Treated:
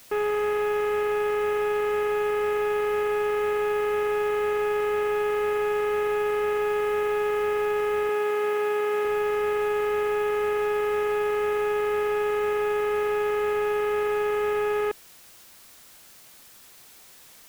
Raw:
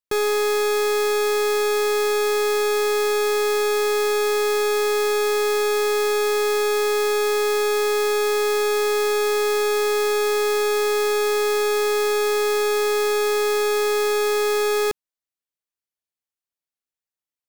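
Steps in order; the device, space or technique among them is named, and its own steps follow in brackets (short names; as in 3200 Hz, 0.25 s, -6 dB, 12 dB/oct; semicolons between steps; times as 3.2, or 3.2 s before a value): army field radio (BPF 360–3200 Hz; CVSD 16 kbps; white noise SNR 25 dB); 8.09–9.05 HPF 170 Hz 12 dB/oct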